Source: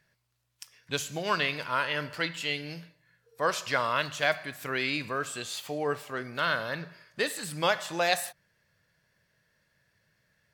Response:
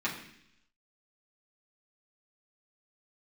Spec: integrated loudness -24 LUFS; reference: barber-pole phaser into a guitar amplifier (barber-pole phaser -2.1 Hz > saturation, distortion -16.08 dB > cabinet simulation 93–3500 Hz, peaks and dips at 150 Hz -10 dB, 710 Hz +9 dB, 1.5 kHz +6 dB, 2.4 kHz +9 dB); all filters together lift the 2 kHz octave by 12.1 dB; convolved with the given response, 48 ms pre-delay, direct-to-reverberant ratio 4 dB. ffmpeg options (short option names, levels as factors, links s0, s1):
-filter_complex "[0:a]equalizer=f=2000:t=o:g=8.5,asplit=2[s0][s1];[1:a]atrim=start_sample=2205,adelay=48[s2];[s1][s2]afir=irnorm=-1:irlink=0,volume=0.266[s3];[s0][s3]amix=inputs=2:normalize=0,asplit=2[s4][s5];[s5]afreqshift=-2.1[s6];[s4][s6]amix=inputs=2:normalize=1,asoftclip=threshold=0.15,highpass=93,equalizer=f=150:t=q:w=4:g=-10,equalizer=f=710:t=q:w=4:g=9,equalizer=f=1500:t=q:w=4:g=6,equalizer=f=2400:t=q:w=4:g=9,lowpass=f=3500:w=0.5412,lowpass=f=3500:w=1.3066"